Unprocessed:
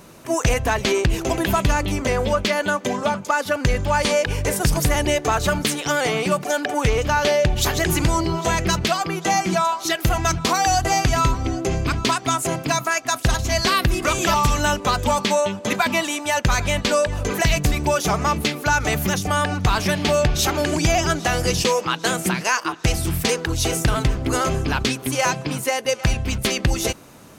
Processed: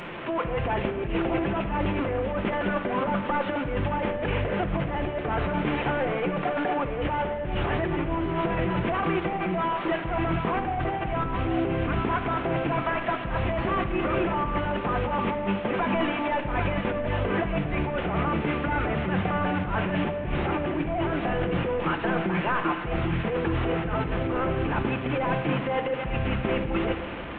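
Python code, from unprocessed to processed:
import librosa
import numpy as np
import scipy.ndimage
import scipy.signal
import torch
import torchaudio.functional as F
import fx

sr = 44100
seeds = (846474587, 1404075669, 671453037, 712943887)

y = fx.delta_mod(x, sr, bps=16000, step_db=-33.5)
y = fx.low_shelf(y, sr, hz=190.0, db=-7.5)
y = fx.over_compress(y, sr, threshold_db=-28.0, ratio=-1.0)
y = fx.room_shoebox(y, sr, seeds[0], volume_m3=2000.0, walls='mixed', distance_m=0.83)
y = y * librosa.db_to_amplitude(1.0)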